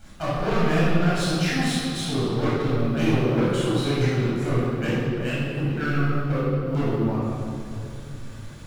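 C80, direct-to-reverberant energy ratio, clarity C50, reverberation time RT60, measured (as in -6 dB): -0.5 dB, -9.5 dB, -3.5 dB, 2.7 s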